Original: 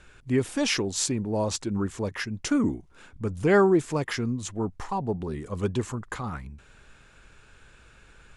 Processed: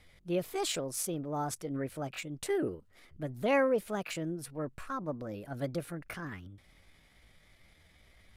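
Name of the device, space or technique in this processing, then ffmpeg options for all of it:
chipmunk voice: -af "asetrate=60591,aresample=44100,atempo=0.727827,volume=-8dB"

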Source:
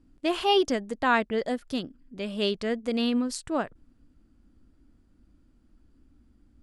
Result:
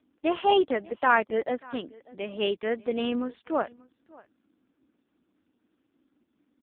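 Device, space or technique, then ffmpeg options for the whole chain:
satellite phone: -af "highpass=340,lowpass=3200,aecho=1:1:589:0.0708,volume=3dB" -ar 8000 -c:a libopencore_amrnb -b:a 5150

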